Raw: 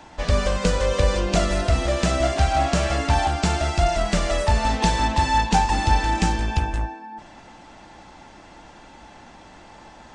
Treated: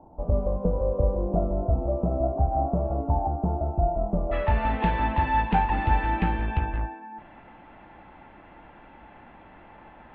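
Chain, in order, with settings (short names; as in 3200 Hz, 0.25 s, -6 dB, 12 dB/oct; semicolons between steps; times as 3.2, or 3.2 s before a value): inverse Chebyshev low-pass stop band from 1700 Hz, stop band 40 dB, from 4.31 s stop band from 5200 Hz; gain -3.5 dB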